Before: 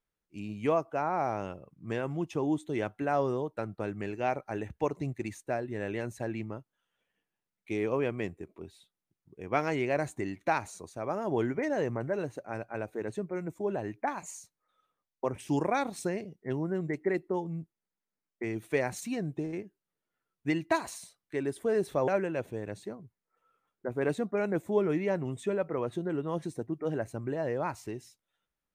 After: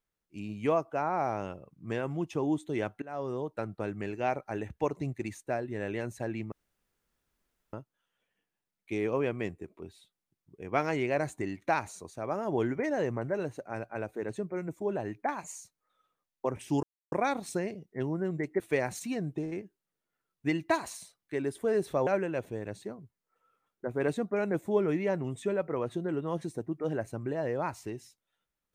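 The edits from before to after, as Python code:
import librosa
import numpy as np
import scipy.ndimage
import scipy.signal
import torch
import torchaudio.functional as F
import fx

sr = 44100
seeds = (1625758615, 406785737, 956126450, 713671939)

y = fx.edit(x, sr, fx.fade_in_from(start_s=3.02, length_s=0.49, floor_db=-22.0),
    fx.insert_room_tone(at_s=6.52, length_s=1.21),
    fx.insert_silence(at_s=15.62, length_s=0.29),
    fx.cut(start_s=17.1, length_s=1.51), tone=tone)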